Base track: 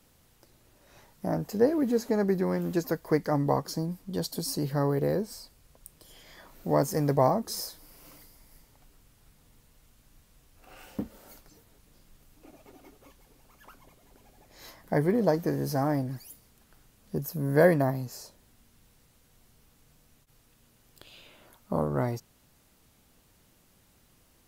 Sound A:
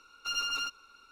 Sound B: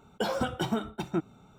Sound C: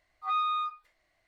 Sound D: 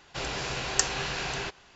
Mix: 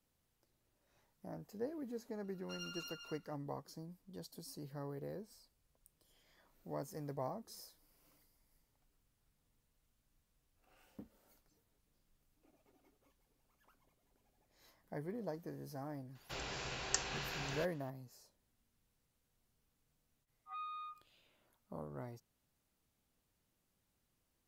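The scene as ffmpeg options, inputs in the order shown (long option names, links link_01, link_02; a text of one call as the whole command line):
ffmpeg -i bed.wav -i cue0.wav -i cue1.wav -i cue2.wav -i cue3.wav -filter_complex "[0:a]volume=-19dB[link_01];[1:a]aecho=1:1:241:0.562[link_02];[3:a]aresample=8000,aresample=44100[link_03];[link_02]atrim=end=1.11,asetpts=PTS-STARTPTS,volume=-16.5dB,afade=type=in:duration=0.004:curve=hsin,afade=type=out:start_time=1.106:duration=0.004:curve=hsin,adelay=2240[link_04];[4:a]atrim=end=1.75,asetpts=PTS-STARTPTS,volume=-11dB,afade=type=in:duration=0.004:curve=hsin,afade=type=out:start_time=1.746:duration=0.004:curve=hsin,adelay=16150[link_05];[link_03]atrim=end=1.27,asetpts=PTS-STARTPTS,volume=-17dB,afade=type=in:duration=0.1,afade=type=out:start_time=1.17:duration=0.1,adelay=20240[link_06];[link_01][link_04][link_05][link_06]amix=inputs=4:normalize=0" out.wav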